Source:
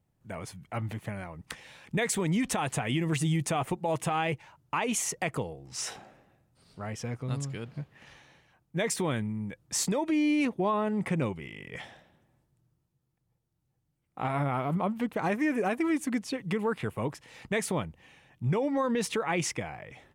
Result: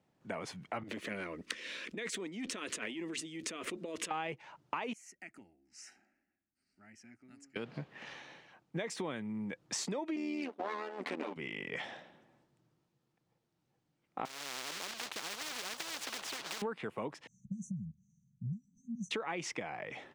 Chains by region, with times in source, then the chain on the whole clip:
0.83–4.11 negative-ratio compressor -36 dBFS + fixed phaser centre 330 Hz, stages 4 + core saturation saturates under 1500 Hz
4.93–7.56 passive tone stack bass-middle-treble 6-0-2 + fixed phaser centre 710 Hz, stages 8
10.16–11.36 minimum comb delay 6.8 ms + AM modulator 80 Hz, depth 50% + brick-wall FIR high-pass 190 Hz
14.25–16.62 low shelf 81 Hz -7.5 dB + companded quantiser 4-bit + spectral compressor 10:1
17.27–19.11 brick-wall FIR band-stop 220–5800 Hz + air absorption 140 m
whole clip: three-band isolator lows -20 dB, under 180 Hz, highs -17 dB, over 6700 Hz; compressor 5:1, threshold -42 dBFS; gain +5.5 dB

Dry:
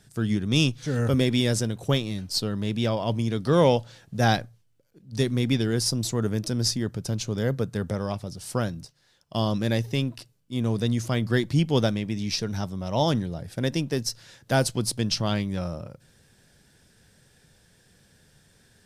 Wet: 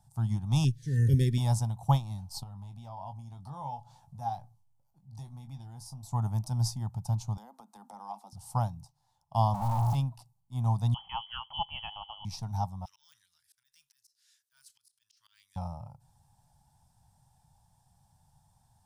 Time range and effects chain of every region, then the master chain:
0.64–1.38 brick-wall FIR band-stop 530–1500 Hz + small resonant body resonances 400/690/1200/1800 Hz, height 16 dB, ringing for 40 ms
2.43–6.12 compressor 2:1, threshold -41 dBFS + doubler 21 ms -7.5 dB
7.37–8.33 steep high-pass 210 Hz 96 dB/oct + notch 600 Hz, Q 8.7 + compressor, threshold -32 dBFS
9.54–9.95 infinite clipping + high shelf 2700 Hz -10 dB
10.94–12.25 dynamic EQ 1600 Hz, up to +4 dB, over -45 dBFS, Q 1.5 + inverted band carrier 3200 Hz
12.85–15.56 de-esser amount 95% + elliptic high-pass 1600 Hz, stop band 50 dB + auto swell 0.202 s
whole clip: EQ curve 130 Hz 0 dB, 450 Hz -28 dB, 840 Hz +11 dB, 1600 Hz -21 dB, 2400 Hz -19 dB, 10000 Hz -5 dB; upward expander 1.5:1, over -35 dBFS; gain +3 dB

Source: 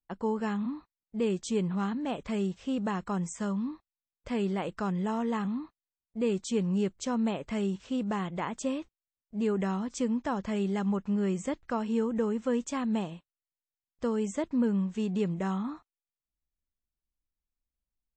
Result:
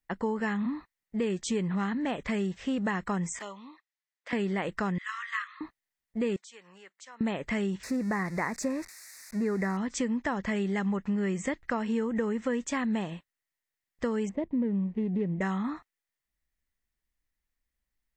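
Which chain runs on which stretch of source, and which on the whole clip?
3.39–4.33 envelope flanger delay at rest 10.8 ms, full sweep at -32 dBFS + BPF 780–7000 Hz
4.98–5.61 steep high-pass 1100 Hz 96 dB/oct + air absorption 57 m
6.36–7.21 HPF 940 Hz + compressor 3:1, threshold -57 dBFS + three-band expander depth 70%
7.83–9.77 switching spikes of -32 dBFS + Butterworth band-stop 3100 Hz, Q 1.6 + air absorption 66 m
14.29–15.41 median filter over 25 samples + LPF 2000 Hz + bell 1400 Hz -14.5 dB 0.86 oct
whole clip: bell 1900 Hz +12.5 dB 0.4 oct; compressor 3:1, threshold -32 dBFS; gain +4.5 dB

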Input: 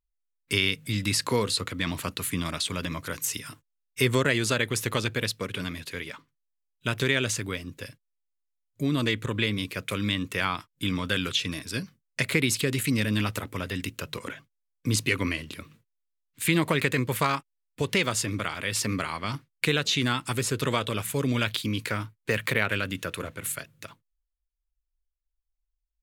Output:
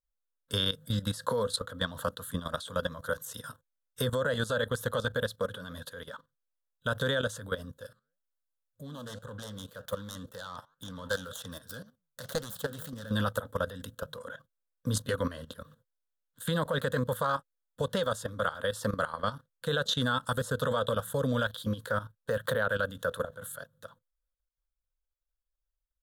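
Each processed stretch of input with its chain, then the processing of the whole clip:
7.72–13.12 self-modulated delay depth 0.24 ms + high shelf 4300 Hz +4 dB + flange 1.9 Hz, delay 5.6 ms, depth 6.8 ms, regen -83%
whole clip: EQ curve 250 Hz 0 dB, 360 Hz -15 dB, 510 Hz +13 dB, 730 Hz +1 dB, 1100 Hz +4 dB, 1600 Hz +7 dB, 2300 Hz -28 dB, 3400 Hz +2 dB, 4900 Hz -8 dB, 11000 Hz 0 dB; level quantiser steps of 14 dB

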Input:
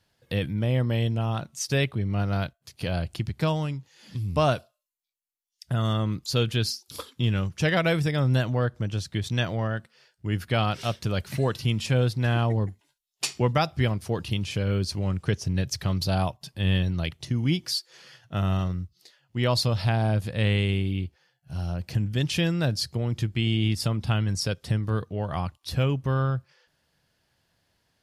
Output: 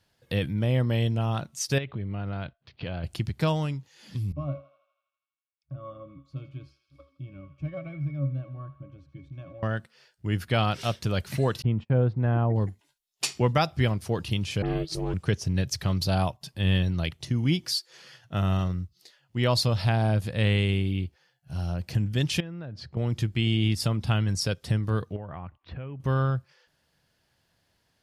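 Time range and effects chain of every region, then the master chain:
1.78–3.04 inverse Chebyshev low-pass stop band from 8600 Hz, stop band 50 dB + compressor 12:1, threshold -28 dBFS
4.32–9.63 octave resonator C#, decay 0.21 s + thinning echo 81 ms, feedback 75%, high-pass 820 Hz, level -13 dB
11.62–12.56 LPF 1100 Hz + gate -40 dBFS, range -35 dB
14.62–15.14 dispersion highs, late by 53 ms, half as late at 2900 Hz + ring modulator 240 Hz
22.4–22.97 LPF 2000 Hz + compressor 8:1, threshold -34 dBFS
25.16–26 LPF 2400 Hz 24 dB/oct + compressor 5:1, threshold -35 dBFS
whole clip: dry

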